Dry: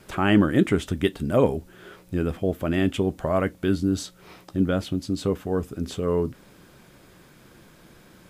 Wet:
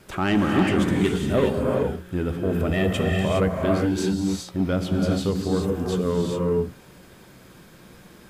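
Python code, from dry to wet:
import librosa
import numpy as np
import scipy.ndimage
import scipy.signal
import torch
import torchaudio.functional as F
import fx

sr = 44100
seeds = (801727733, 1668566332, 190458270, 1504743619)

y = 10.0 ** (-14.5 / 20.0) * np.tanh(x / 10.0 ** (-14.5 / 20.0))
y = fx.comb(y, sr, ms=1.6, depth=0.85, at=(2.7, 3.21))
y = fx.rev_gated(y, sr, seeds[0], gate_ms=440, shape='rising', drr_db=-0.5)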